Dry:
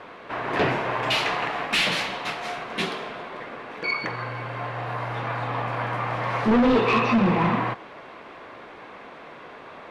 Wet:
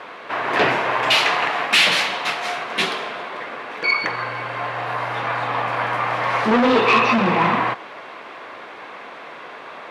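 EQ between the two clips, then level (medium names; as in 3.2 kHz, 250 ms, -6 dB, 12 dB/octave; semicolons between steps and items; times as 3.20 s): high-pass 150 Hz 6 dB/octave; bass shelf 470 Hz -8 dB; +8.0 dB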